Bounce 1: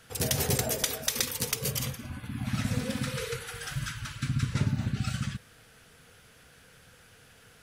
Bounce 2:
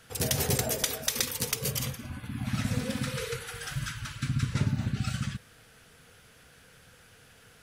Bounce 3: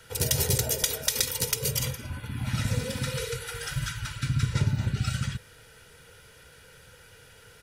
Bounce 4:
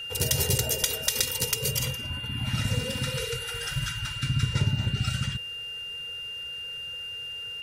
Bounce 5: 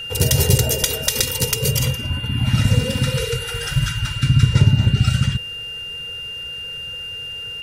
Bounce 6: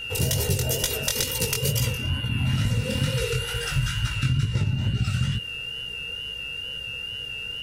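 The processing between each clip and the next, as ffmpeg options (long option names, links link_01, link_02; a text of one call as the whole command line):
ffmpeg -i in.wav -af anull out.wav
ffmpeg -i in.wav -filter_complex "[0:a]bandreject=frequency=1100:width=17,aecho=1:1:2.1:0.51,acrossover=split=210|3000[link_01][link_02][link_03];[link_02]acompressor=threshold=-37dB:ratio=2.5[link_04];[link_01][link_04][link_03]amix=inputs=3:normalize=0,volume=2.5dB" out.wav
ffmpeg -i in.wav -af "aeval=exprs='val(0)+0.02*sin(2*PI*2800*n/s)':channel_layout=same" out.wav
ffmpeg -i in.wav -af "lowshelf=frequency=480:gain=6.5,volume=6dB" out.wav
ffmpeg -i in.wav -af "acompressor=threshold=-16dB:ratio=10,flanger=delay=16.5:depth=7.4:speed=2.2,aeval=exprs='val(0)+0.00282*(sin(2*PI*60*n/s)+sin(2*PI*2*60*n/s)/2+sin(2*PI*3*60*n/s)/3+sin(2*PI*4*60*n/s)/4+sin(2*PI*5*60*n/s)/5)':channel_layout=same" out.wav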